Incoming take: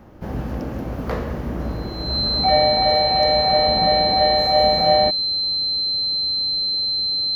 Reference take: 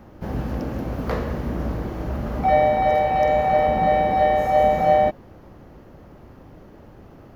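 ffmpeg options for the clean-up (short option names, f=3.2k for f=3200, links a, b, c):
-af "bandreject=f=4.1k:w=30"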